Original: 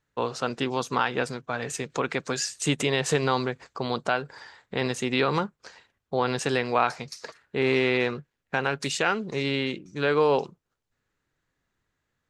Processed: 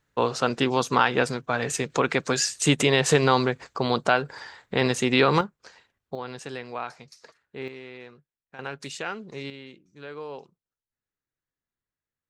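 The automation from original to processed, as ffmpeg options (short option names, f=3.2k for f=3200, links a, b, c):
-af "asetnsamples=n=441:p=0,asendcmd='5.41 volume volume -2.5dB;6.15 volume volume -10.5dB;7.68 volume volume -19dB;8.59 volume volume -8dB;9.5 volume volume -16dB',volume=4.5dB"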